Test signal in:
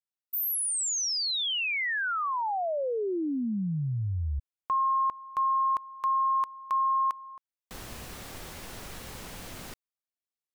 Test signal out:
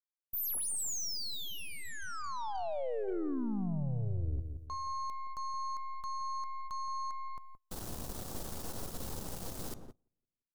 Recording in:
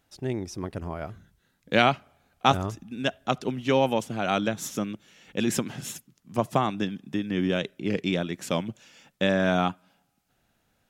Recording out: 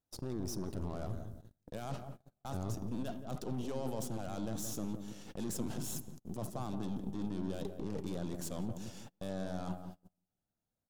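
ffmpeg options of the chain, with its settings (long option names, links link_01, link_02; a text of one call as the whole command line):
ffmpeg -i in.wav -filter_complex "[0:a]areverse,acompressor=threshold=-39dB:ratio=6:attack=0.13:release=38:knee=6:detection=rms,areverse,bandreject=frequency=405.1:width_type=h:width=4,bandreject=frequency=810.2:width_type=h:width=4,bandreject=frequency=1215.3:width_type=h:width=4,bandreject=frequency=1620.4:width_type=h:width=4,bandreject=frequency=2025.5:width_type=h:width=4,bandreject=frequency=2430.6:width_type=h:width=4,bandreject=frequency=2835.7:width_type=h:width=4,bandreject=frequency=3240.8:width_type=h:width=4,bandreject=frequency=3645.9:width_type=h:width=4,bandreject=frequency=4051:width_type=h:width=4,bandreject=frequency=4456.1:width_type=h:width=4,bandreject=frequency=4861.2:width_type=h:width=4,bandreject=frequency=5266.3:width_type=h:width=4,bandreject=frequency=5671.4:width_type=h:width=4,bandreject=frequency=6076.5:width_type=h:width=4,bandreject=frequency=6481.6:width_type=h:width=4,bandreject=frequency=6886.7:width_type=h:width=4,bandreject=frequency=7291.8:width_type=h:width=4,bandreject=frequency=7696.9:width_type=h:width=4,bandreject=frequency=8102:width_type=h:width=4,bandreject=frequency=8507.1:width_type=h:width=4,bandreject=frequency=8912.2:width_type=h:width=4,bandreject=frequency=9317.3:width_type=h:width=4,bandreject=frequency=9722.4:width_type=h:width=4,bandreject=frequency=10127.5:width_type=h:width=4,bandreject=frequency=10532.6:width_type=h:width=4,bandreject=frequency=10937.7:width_type=h:width=4,bandreject=frequency=11342.8:width_type=h:width=4,bandreject=frequency=11747.9:width_type=h:width=4,bandreject=frequency=12153:width_type=h:width=4,bandreject=frequency=12558.1:width_type=h:width=4,bandreject=frequency=12963.2:width_type=h:width=4,bandreject=frequency=13368.3:width_type=h:width=4,bandreject=frequency=13773.4:width_type=h:width=4,aeval=exprs='0.0237*(cos(1*acos(clip(val(0)/0.0237,-1,1)))-cos(1*PI/2))+0.00299*(cos(8*acos(clip(val(0)/0.0237,-1,1)))-cos(8*PI/2))':channel_layout=same,equalizer=frequency=2200:width=0.94:gain=-14,asplit=2[link_01][link_02];[link_02]adelay=172,lowpass=frequency=830:poles=1,volume=-6.5dB,asplit=2[link_03][link_04];[link_04]adelay=172,lowpass=frequency=830:poles=1,volume=0.4,asplit=2[link_05][link_06];[link_06]adelay=172,lowpass=frequency=830:poles=1,volume=0.4,asplit=2[link_07][link_08];[link_08]adelay=172,lowpass=frequency=830:poles=1,volume=0.4,asplit=2[link_09][link_10];[link_10]adelay=172,lowpass=frequency=830:poles=1,volume=0.4[link_11];[link_03][link_05][link_07][link_09][link_11]amix=inputs=5:normalize=0[link_12];[link_01][link_12]amix=inputs=2:normalize=0,agate=range=-24dB:threshold=-56dB:ratio=16:release=90:detection=peak,volume=4.5dB" out.wav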